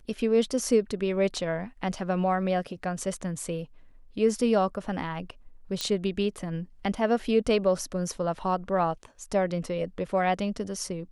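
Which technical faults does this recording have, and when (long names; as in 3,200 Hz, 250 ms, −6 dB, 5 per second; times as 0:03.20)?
0:05.81: click −14 dBFS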